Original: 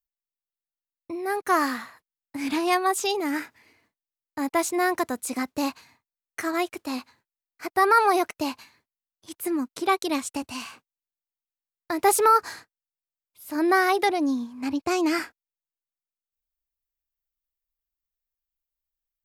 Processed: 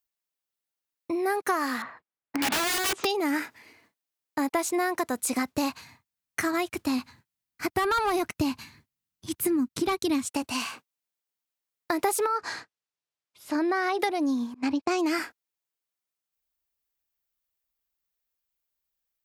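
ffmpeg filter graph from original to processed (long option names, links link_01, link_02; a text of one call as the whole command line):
ffmpeg -i in.wav -filter_complex "[0:a]asettb=1/sr,asplit=3[link_01][link_02][link_03];[link_01]atrim=end=1.824[link_04];[link_02]atrim=start=1.82:end=3.05,asetpts=PTS-STARTPTS,afade=type=in:duration=0.004:curve=qsin,afade=type=out:start_time=1.226:duration=0.004:curve=qsin,lowpass=2000,aeval=exprs='(mod(17.8*val(0)+1,2)-1)/17.8':channel_layout=same[link_05];[link_03]atrim=start=3.046[link_06];[link_04][link_05]acrossfade=duration=0.004:curve1=hsin:curve2=qsin[link_07];[link_07][link_06]acrossfade=duration=0.004:curve1=qsin:curve2=hsin,asettb=1/sr,asplit=3[link_08][link_09][link_10];[link_08]atrim=end=4.994[link_11];[link_09]atrim=start=4.99:end=10.25,asetpts=PTS-STARTPTS,afade=type=in:duration=0.004:curve=qsin,afade=type=out:start_time=5.256:duration=0.004:curve=qsin,asoftclip=type=hard:threshold=-16dB,asubboost=boost=10.5:cutoff=180[link_12];[link_10]atrim=start=10.246[link_13];[link_11][link_12]acrossfade=duration=0.004:curve1=hsin:curve2=qsin[link_14];[link_14][link_13]acrossfade=duration=0.004:curve1=qsin:curve2=hsin,asettb=1/sr,asplit=3[link_15][link_16][link_17];[link_15]atrim=end=12.264[link_18];[link_16]atrim=start=12.26:end=14,asetpts=PTS-STARTPTS,afade=type=in:duration=0.004:curve=qsin,afade=type=out:start_time=1.736:duration=0.004:curve=qsin,lowpass=6400,acompressor=threshold=-24dB:ratio=2:attack=3.2:release=140:knee=1:detection=peak[link_19];[link_17]atrim=start=13.996[link_20];[link_18][link_19]acrossfade=duration=0.004:curve1=hsin:curve2=qsin[link_21];[link_21][link_20]acrossfade=duration=0.004:curve1=qsin:curve2=hsin,asettb=1/sr,asplit=3[link_22][link_23][link_24];[link_22]atrim=end=14.544[link_25];[link_23]atrim=start=14.54:end=14.99,asetpts=PTS-STARTPTS,afade=type=in:duration=0.004:curve=qsin,afade=type=out:start_time=0.446:duration=0.004:curve=qsin,lowpass=6900,agate=range=-33dB:threshold=-30dB:ratio=3:release=100:detection=peak[link_26];[link_24]atrim=start=14.986[link_27];[link_25][link_26]acrossfade=duration=0.004:curve1=hsin:curve2=qsin[link_28];[link_28][link_27]acrossfade=duration=0.004:curve1=qsin:curve2=hsin,highpass=frequency=120:poles=1,acompressor=threshold=-29dB:ratio=6,volume=5.5dB" out.wav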